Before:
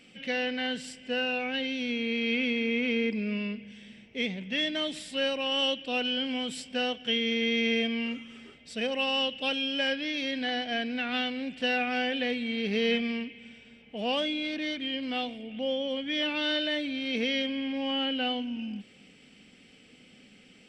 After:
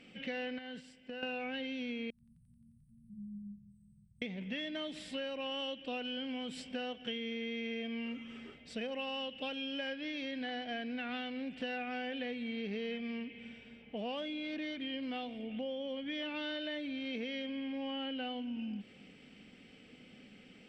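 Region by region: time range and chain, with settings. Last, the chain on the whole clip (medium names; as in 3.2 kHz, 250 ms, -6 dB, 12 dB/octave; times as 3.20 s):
0.58–1.23 s: gate -40 dBFS, range -11 dB + compression 8:1, threshold -40 dBFS
2.10–4.22 s: brick-wall FIR band-stop 190–8000 Hz + feedback echo behind a high-pass 88 ms, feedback 83%, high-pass 2.2 kHz, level -11 dB
whole clip: low-pass 2.5 kHz 6 dB/octave; compression 6:1, threshold -37 dBFS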